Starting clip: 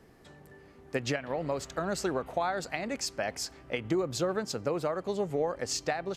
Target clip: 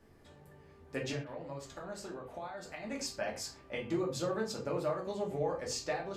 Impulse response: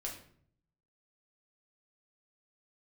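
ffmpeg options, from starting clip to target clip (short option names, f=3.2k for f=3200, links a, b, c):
-filter_complex "[0:a]asettb=1/sr,asplit=3[a][b][c];[a]atrim=end=1.124[d];[b]atrim=start=1.12:end=2.85,asetpts=PTS-STARTPTS,afade=t=in:d=0.004:c=qsin,afade=t=out:st=1.726:d=0.004:c=qsin,acompressor=threshold=-36dB:ratio=6[e];[c]atrim=start=2.846[f];[d][e]acrossfade=d=0.004:c1=hsin:c2=qsin[g];[g][f]acrossfade=d=0.004:c1=qsin:c2=hsin[h];[1:a]atrim=start_sample=2205,afade=t=out:st=0.28:d=0.01,atrim=end_sample=12789,asetrate=70560,aresample=44100[i];[h][i]afir=irnorm=-1:irlink=0"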